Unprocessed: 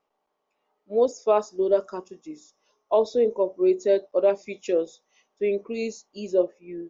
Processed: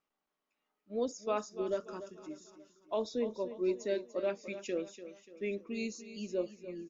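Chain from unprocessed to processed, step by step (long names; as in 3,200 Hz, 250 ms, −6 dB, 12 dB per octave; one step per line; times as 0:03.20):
flat-topped bell 620 Hz −9 dB
on a send: repeating echo 292 ms, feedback 45%, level −13 dB
on the sum: level −5 dB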